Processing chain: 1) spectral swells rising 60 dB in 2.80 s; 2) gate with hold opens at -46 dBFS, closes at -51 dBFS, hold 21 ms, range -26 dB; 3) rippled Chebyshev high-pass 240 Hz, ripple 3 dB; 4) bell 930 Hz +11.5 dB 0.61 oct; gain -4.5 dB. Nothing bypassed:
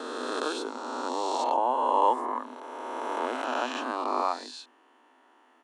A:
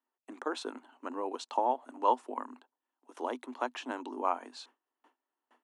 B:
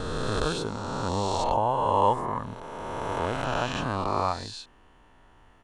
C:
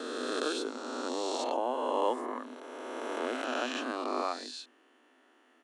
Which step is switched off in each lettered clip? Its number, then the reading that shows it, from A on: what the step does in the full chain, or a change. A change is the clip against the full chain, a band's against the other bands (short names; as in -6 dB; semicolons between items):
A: 1, momentary loudness spread change +4 LU; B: 3, loudness change +1.5 LU; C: 4, 1 kHz band -8.0 dB